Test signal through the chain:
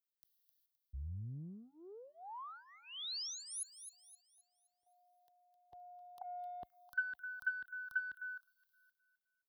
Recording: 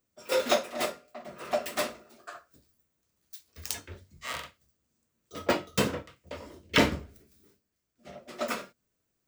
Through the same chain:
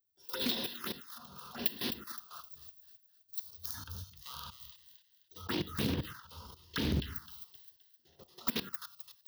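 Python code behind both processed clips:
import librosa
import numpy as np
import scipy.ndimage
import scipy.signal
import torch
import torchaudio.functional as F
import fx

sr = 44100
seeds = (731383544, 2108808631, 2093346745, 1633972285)

p1 = fx.transient(x, sr, attack_db=-7, sustain_db=12)
p2 = fx.level_steps(p1, sr, step_db=15)
p3 = scipy.signal.sosfilt(scipy.signal.butter(2, 43.0, 'highpass', fs=sr, output='sos'), p2)
p4 = fx.high_shelf(p3, sr, hz=6600.0, db=11.5)
p5 = p4 + fx.echo_wet_highpass(p4, sr, ms=260, feedback_pct=36, hz=1500.0, wet_db=-10, dry=0)
p6 = fx.env_phaser(p5, sr, low_hz=200.0, high_hz=1300.0, full_db=-28.0)
p7 = fx.fixed_phaser(p6, sr, hz=2300.0, stages=6)
p8 = fx.rider(p7, sr, range_db=3, speed_s=2.0)
p9 = fx.doppler_dist(p8, sr, depth_ms=0.57)
y = p9 * librosa.db_to_amplitude(1.0)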